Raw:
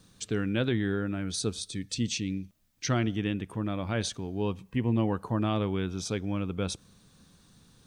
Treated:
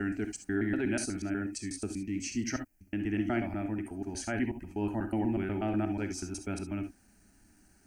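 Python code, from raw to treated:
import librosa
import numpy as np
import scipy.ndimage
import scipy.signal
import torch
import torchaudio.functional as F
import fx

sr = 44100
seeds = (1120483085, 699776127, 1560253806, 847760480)

y = fx.block_reorder(x, sr, ms=122.0, group=4)
y = fx.fixed_phaser(y, sr, hz=730.0, stages=8)
y = fx.rev_gated(y, sr, seeds[0], gate_ms=90, shape='rising', drr_db=7.5)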